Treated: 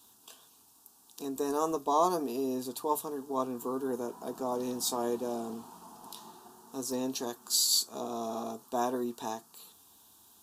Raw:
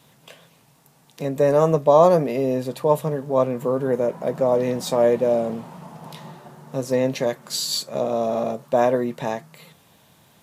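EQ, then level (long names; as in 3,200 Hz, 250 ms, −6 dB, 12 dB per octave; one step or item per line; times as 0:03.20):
high-shelf EQ 3,300 Hz +11 dB
phaser with its sweep stopped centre 560 Hz, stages 6
−7.5 dB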